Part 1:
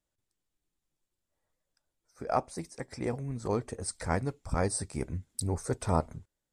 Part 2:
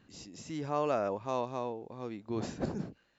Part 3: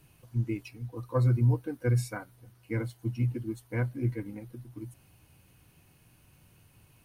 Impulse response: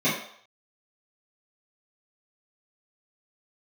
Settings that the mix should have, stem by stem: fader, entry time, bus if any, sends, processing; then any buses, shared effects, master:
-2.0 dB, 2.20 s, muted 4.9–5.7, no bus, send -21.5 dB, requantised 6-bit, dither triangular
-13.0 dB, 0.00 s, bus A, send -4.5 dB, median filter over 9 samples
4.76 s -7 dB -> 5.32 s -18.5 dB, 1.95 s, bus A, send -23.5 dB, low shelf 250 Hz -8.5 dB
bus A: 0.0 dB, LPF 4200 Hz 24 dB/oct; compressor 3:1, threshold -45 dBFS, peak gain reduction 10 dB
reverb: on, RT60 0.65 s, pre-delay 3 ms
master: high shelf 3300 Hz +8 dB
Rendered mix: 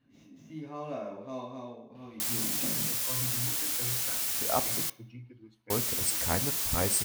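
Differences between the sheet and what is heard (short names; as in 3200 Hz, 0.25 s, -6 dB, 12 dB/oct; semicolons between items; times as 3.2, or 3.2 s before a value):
stem 3 -7.0 dB -> -0.5 dB; reverb return -6.5 dB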